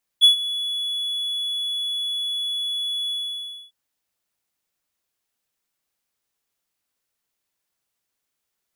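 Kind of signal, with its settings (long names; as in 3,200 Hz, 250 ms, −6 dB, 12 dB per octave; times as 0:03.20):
note with an ADSR envelope triangle 3,400 Hz, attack 32 ms, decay 114 ms, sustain −16 dB, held 2.89 s, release 612 ms −5.5 dBFS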